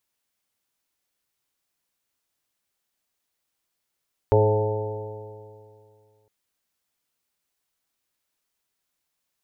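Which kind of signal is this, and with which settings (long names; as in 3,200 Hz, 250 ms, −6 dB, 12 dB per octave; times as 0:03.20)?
stiff-string partials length 1.96 s, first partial 105 Hz, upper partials −17/−12/1.5/−2.5/−11.5/−14/−6.5 dB, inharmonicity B 0.0017, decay 2.36 s, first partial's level −18 dB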